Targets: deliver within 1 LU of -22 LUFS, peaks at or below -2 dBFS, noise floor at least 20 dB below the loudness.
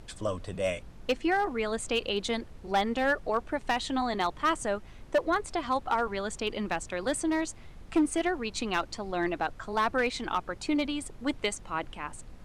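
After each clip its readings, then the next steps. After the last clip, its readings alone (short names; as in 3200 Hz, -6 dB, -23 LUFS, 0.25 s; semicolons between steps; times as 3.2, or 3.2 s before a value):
clipped 0.7%; flat tops at -19.5 dBFS; noise floor -48 dBFS; noise floor target -51 dBFS; loudness -30.5 LUFS; peak -19.5 dBFS; loudness target -22.0 LUFS
-> clip repair -19.5 dBFS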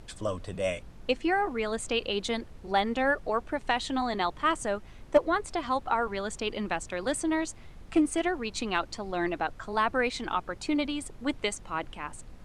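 clipped 0.0%; noise floor -48 dBFS; noise floor target -50 dBFS
-> noise print and reduce 6 dB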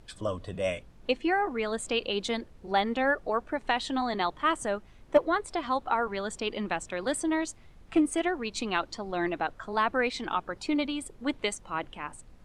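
noise floor -54 dBFS; loudness -30.0 LUFS; peak -10.5 dBFS; loudness target -22.0 LUFS
-> gain +8 dB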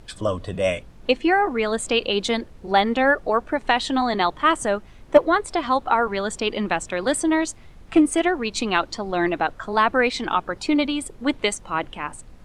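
loudness -22.0 LUFS; peak -2.5 dBFS; noise floor -46 dBFS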